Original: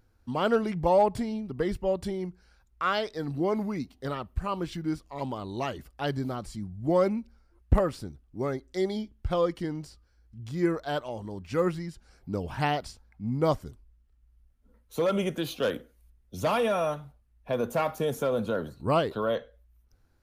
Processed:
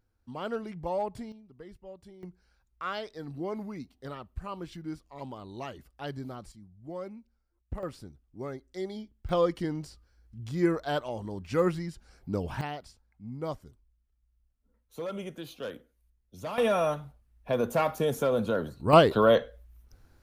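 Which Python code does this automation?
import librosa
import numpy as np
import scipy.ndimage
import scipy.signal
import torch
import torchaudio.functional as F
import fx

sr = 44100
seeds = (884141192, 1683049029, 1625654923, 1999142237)

y = fx.gain(x, sr, db=fx.steps((0.0, -9.5), (1.32, -19.0), (2.23, -7.5), (6.52, -15.5), (7.83, -7.5), (9.29, 0.5), (12.61, -10.0), (16.58, 1.0), (18.93, 7.5)))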